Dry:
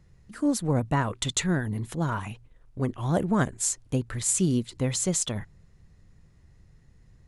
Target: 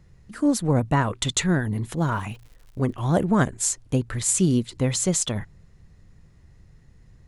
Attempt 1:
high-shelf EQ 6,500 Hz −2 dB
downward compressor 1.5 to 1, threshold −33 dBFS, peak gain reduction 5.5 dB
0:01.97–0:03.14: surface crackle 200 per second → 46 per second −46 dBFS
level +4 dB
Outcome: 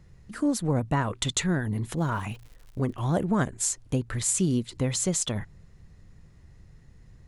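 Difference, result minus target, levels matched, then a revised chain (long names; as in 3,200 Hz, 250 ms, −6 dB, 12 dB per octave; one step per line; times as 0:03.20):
downward compressor: peak gain reduction +5.5 dB
high-shelf EQ 6,500 Hz −2 dB
0:01.97–0:03.14: surface crackle 200 per second → 46 per second −46 dBFS
level +4 dB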